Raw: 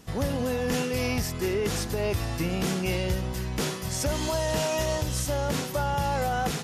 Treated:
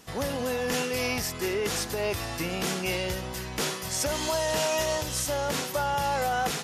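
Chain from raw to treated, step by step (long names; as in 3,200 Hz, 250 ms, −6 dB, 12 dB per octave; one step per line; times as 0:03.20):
low-shelf EQ 290 Hz −11.5 dB
level +2.5 dB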